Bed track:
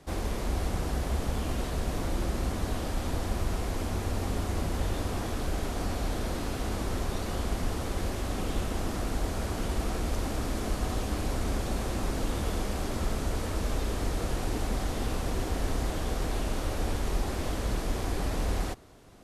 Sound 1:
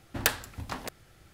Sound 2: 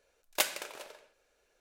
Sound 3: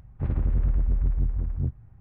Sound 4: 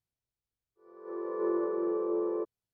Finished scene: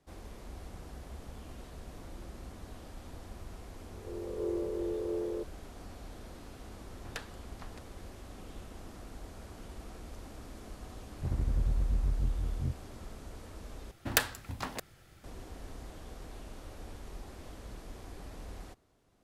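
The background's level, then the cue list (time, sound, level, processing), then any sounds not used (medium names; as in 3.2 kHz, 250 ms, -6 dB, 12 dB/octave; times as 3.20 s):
bed track -16 dB
2.99 s: add 4 -4 dB + steep low-pass 820 Hz
6.90 s: add 1 -14.5 dB + distance through air 63 m
11.02 s: add 3 -6.5 dB
13.91 s: replace with 1 -1.5 dB
not used: 2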